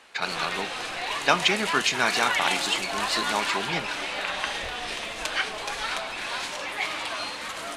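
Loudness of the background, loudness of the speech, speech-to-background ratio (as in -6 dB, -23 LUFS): -28.5 LUFS, -26.5 LUFS, 2.0 dB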